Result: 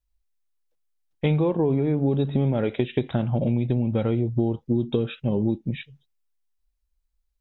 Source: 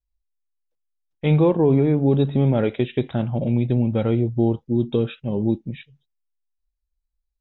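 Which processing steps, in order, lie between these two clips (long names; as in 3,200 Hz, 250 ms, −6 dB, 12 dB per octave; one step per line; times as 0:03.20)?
downward compressor, threshold −23 dBFS, peak gain reduction 10 dB
level +4 dB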